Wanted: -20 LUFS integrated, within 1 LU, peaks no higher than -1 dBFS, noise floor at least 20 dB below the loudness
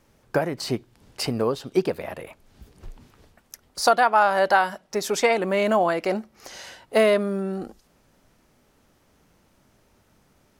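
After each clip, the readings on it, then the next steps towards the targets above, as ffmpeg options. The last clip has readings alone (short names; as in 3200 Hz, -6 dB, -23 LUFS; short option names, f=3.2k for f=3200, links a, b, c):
loudness -23.0 LUFS; peak -5.0 dBFS; loudness target -20.0 LUFS
-> -af "volume=3dB"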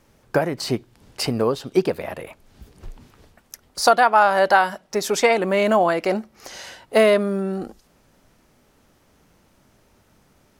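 loudness -20.0 LUFS; peak -2.0 dBFS; noise floor -60 dBFS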